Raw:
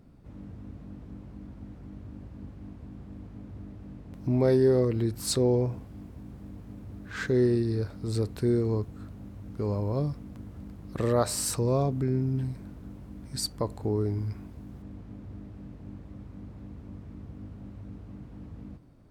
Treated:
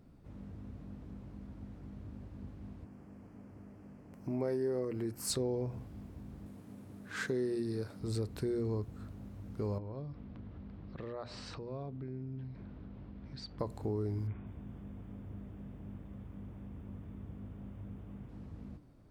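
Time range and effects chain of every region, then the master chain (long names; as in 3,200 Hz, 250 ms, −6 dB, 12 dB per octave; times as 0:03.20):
0:02.84–0:05.30: high-pass filter 240 Hz 6 dB per octave + parametric band 3,700 Hz −15 dB 0.39 octaves
0:06.46–0:08.00: high-pass filter 140 Hz + parametric band 10,000 Hz +7 dB 0.8 octaves
0:09.78–0:13.59: low-pass filter 4,000 Hz 24 dB per octave + downward compressor 3 to 1, threshold −39 dBFS
0:14.27–0:18.29: linear-phase brick-wall low-pass 3,700 Hz + feedback echo at a low word length 197 ms, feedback 55%, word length 11 bits, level −13 dB
whole clip: mains-hum notches 60/120/180/240/300 Hz; downward compressor 3 to 1, threshold −29 dBFS; level −3.5 dB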